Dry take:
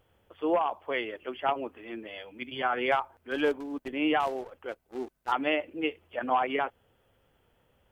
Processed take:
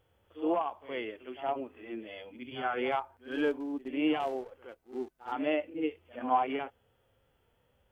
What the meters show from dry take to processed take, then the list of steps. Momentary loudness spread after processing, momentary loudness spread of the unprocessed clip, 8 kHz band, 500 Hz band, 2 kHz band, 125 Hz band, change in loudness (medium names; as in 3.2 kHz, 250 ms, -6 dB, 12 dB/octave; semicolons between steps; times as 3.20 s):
13 LU, 13 LU, no reading, -3.0 dB, -7.0 dB, -2.5 dB, -3.5 dB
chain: harmonic-percussive split percussive -13 dB; pre-echo 67 ms -14 dB